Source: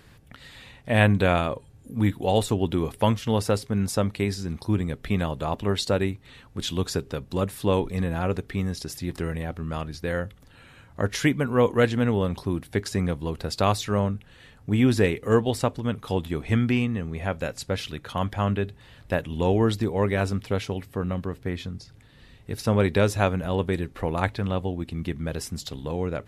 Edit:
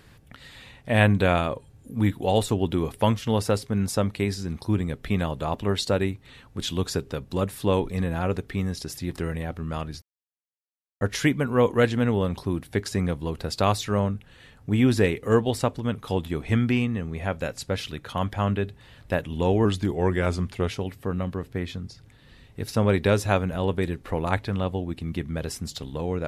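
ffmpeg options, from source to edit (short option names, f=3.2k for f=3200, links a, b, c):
-filter_complex "[0:a]asplit=5[a][b][c][d][e];[a]atrim=end=10.02,asetpts=PTS-STARTPTS,afade=t=out:st=10.016:d=0.004:c=hsin[f];[b]atrim=start=10.02:end=11.01,asetpts=PTS-STARTPTS,volume=0[g];[c]atrim=start=11.01:end=19.654,asetpts=PTS-STARTPTS,afade=t=in:d=0.004:c=hsin[h];[d]atrim=start=19.65:end=20.6,asetpts=PTS-STARTPTS,asetrate=40131,aresample=44100,atrim=end_sample=46038,asetpts=PTS-STARTPTS[i];[e]atrim=start=20.596[j];[f][g][h]concat=n=3:v=0:a=1[k];[k][i]acrossfade=d=0.004:c1=hsin:c2=hsin[l];[l][j]acrossfade=d=0.004:c1=hsin:c2=hsin"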